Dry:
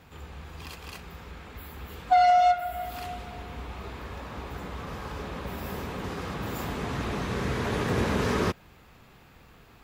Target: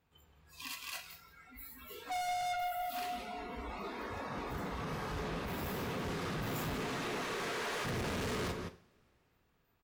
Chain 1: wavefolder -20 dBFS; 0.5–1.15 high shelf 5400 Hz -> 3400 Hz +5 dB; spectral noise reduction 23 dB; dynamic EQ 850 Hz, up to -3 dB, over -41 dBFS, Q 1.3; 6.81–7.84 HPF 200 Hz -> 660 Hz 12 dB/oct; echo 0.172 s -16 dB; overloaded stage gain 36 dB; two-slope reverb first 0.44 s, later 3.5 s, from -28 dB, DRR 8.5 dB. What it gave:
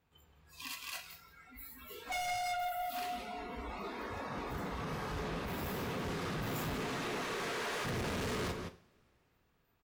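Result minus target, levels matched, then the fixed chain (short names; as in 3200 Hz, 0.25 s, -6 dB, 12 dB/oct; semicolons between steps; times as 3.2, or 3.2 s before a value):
wavefolder: distortion +34 dB
wavefolder -13 dBFS; 0.5–1.15 high shelf 5400 Hz -> 3400 Hz +5 dB; spectral noise reduction 23 dB; dynamic EQ 850 Hz, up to -3 dB, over -41 dBFS, Q 1.3; 6.81–7.84 HPF 200 Hz -> 660 Hz 12 dB/oct; echo 0.172 s -16 dB; overloaded stage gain 36 dB; two-slope reverb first 0.44 s, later 3.5 s, from -28 dB, DRR 8.5 dB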